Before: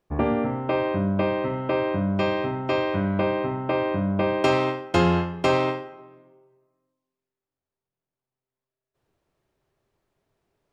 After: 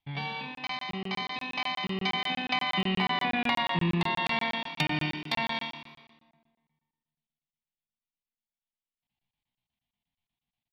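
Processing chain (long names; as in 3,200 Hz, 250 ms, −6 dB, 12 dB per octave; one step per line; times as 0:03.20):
source passing by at 0:03.45, 20 m/s, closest 8.1 metres
downward compressor 3 to 1, threshold −31 dBFS, peak gain reduction 8.5 dB
drawn EQ curve 110 Hz 0 dB, 320 Hz −16 dB, 450 Hz +3 dB, 720 Hz −13 dB, 1,200 Hz +7 dB, 1,900 Hz +14 dB, 4,500 Hz −12 dB, 6,600 Hz +11 dB, 10,000 Hz 0 dB
pitch shifter +10.5 semitones
on a send: echo with shifted repeats 96 ms, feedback 59%, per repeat +38 Hz, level −16.5 dB
on the sum: treble cut that deepens with the level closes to 2,600 Hz, closed at −30.5 dBFS
bass and treble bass +4 dB, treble −4 dB
rectangular room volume 790 cubic metres, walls mixed, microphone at 0.32 metres
wave folding −24 dBFS
regular buffer underruns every 0.12 s, samples 1,024, zero, from 0:00.55
level +7.5 dB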